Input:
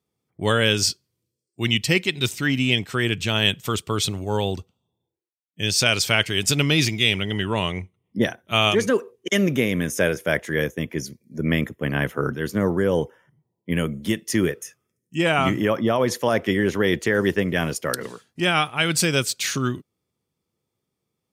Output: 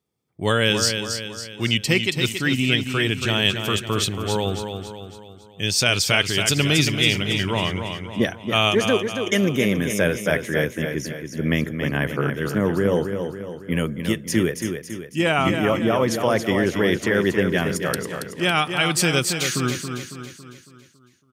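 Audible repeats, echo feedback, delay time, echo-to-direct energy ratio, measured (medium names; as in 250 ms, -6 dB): 5, 49%, 277 ms, -6.0 dB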